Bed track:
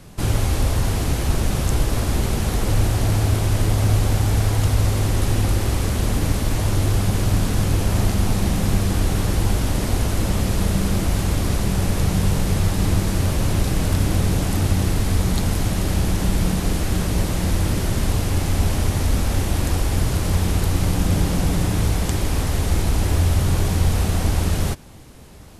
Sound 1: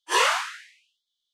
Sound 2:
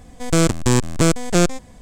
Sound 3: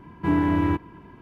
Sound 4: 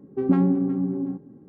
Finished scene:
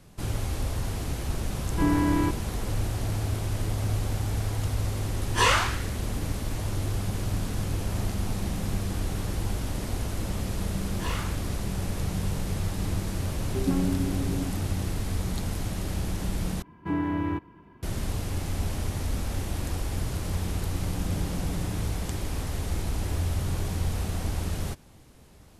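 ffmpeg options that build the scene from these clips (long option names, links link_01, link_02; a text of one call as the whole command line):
ffmpeg -i bed.wav -i cue0.wav -i cue1.wav -i cue2.wav -i cue3.wav -filter_complex "[3:a]asplit=2[link_01][link_02];[1:a]asplit=2[link_03][link_04];[0:a]volume=-10dB[link_05];[link_04]adynamicsmooth=sensitivity=4.5:basefreq=4500[link_06];[link_05]asplit=2[link_07][link_08];[link_07]atrim=end=16.624[link_09];[link_02]atrim=end=1.21,asetpts=PTS-STARTPTS,volume=-6.5dB[link_10];[link_08]atrim=start=17.826[link_11];[link_01]atrim=end=1.21,asetpts=PTS-STARTPTS,volume=-2.5dB,afade=type=in:duration=0.004:curve=hsin,afade=type=out:start_time=1.206:duration=0.004:curve=hsin,adelay=1540[link_12];[link_03]atrim=end=1.33,asetpts=PTS-STARTPTS,volume=-1dB,afade=type=in:duration=0.004:curve=hsin,afade=type=out:start_time=1.326:duration=0.004:curve=hsin,adelay=5260[link_13];[link_06]atrim=end=1.33,asetpts=PTS-STARTPTS,volume=-15dB,afade=type=in:duration=0.004:curve=hsin,afade=type=out:start_time=1.326:duration=0.004:curve=hsin,adelay=480690S[link_14];[4:a]atrim=end=1.48,asetpts=PTS-STARTPTS,volume=-7dB,afade=type=in:duration=0.004:curve=hsin,afade=type=out:start_time=1.476:duration=0.004:curve=hsin,adelay=13380[link_15];[link_09][link_10]acrossfade=duration=0.004:curve1=hsin:curve2=hsin[link_16];[link_16][link_11]acrossfade=duration=0.004:curve1=hsin:curve2=hsin[link_17];[link_17][link_12][link_13][link_14][link_15]amix=inputs=5:normalize=0" out.wav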